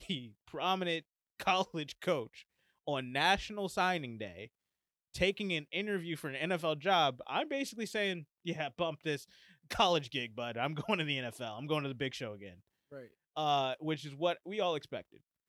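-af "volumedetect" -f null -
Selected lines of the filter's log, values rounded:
mean_volume: -36.2 dB
max_volume: -13.4 dB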